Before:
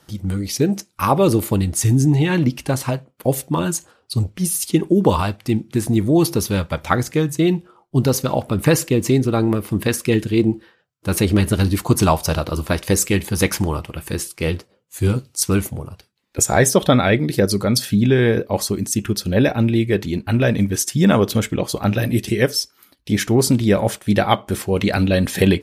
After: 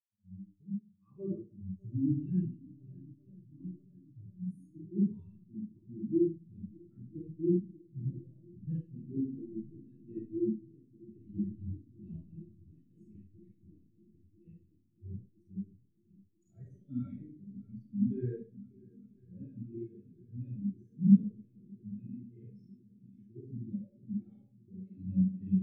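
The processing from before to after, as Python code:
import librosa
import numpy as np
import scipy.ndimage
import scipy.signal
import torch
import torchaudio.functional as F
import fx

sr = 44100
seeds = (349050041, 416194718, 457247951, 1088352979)

p1 = fx.low_shelf(x, sr, hz=120.0, db=-7.5)
p2 = fx.hpss(p1, sr, part='percussive', gain_db=-14)
p3 = fx.curve_eq(p2, sr, hz=(310.0, 500.0, 990.0, 2100.0), db=(0, -7, -9, 0))
p4 = np.sign(p3) * np.maximum(np.abs(p3) - 10.0 ** (-38.5 / 20.0), 0.0)
p5 = p4 + fx.echo_swing(p4, sr, ms=995, ratio=1.5, feedback_pct=79, wet_db=-11.0, dry=0)
p6 = fx.rev_schroeder(p5, sr, rt60_s=0.9, comb_ms=33, drr_db=-3.5)
p7 = fx.spectral_expand(p6, sr, expansion=2.5)
y = p7 * 10.0 ** (-8.5 / 20.0)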